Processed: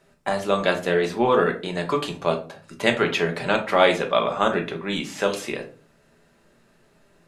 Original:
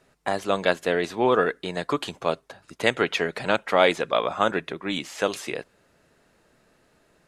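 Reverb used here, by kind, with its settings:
rectangular room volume 230 cubic metres, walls furnished, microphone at 1.2 metres

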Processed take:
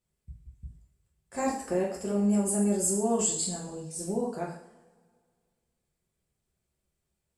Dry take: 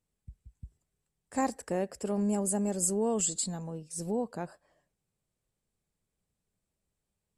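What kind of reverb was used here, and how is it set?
coupled-rooms reverb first 0.54 s, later 2 s, from −21 dB, DRR −4.5 dB
level −3 dB

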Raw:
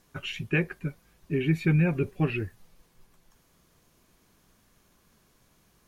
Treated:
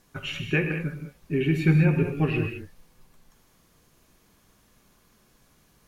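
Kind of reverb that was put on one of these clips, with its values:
reverb whose tail is shaped and stops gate 240 ms flat, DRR 4.5 dB
level +1.5 dB

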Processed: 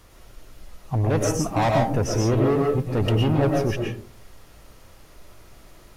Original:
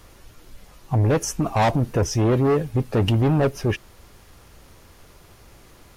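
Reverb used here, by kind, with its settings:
comb and all-pass reverb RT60 0.47 s, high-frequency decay 0.35×, pre-delay 80 ms, DRR 0 dB
level −3.5 dB

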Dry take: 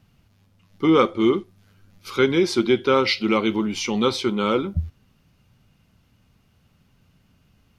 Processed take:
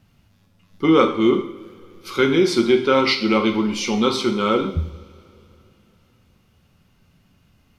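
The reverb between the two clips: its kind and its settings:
coupled-rooms reverb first 0.61 s, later 3.3 s, from −22 dB, DRR 4 dB
level +1 dB

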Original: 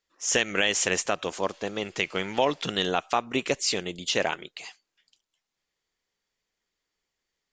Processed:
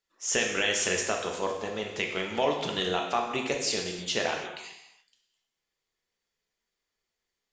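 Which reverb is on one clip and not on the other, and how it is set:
reverb whose tail is shaped and stops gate 360 ms falling, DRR 1 dB
level −4.5 dB

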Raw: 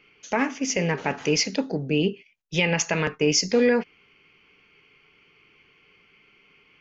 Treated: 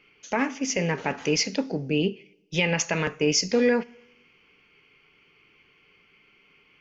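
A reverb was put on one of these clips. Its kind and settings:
coupled-rooms reverb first 0.77 s, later 2 s, from −21 dB, DRR 19.5 dB
level −1.5 dB

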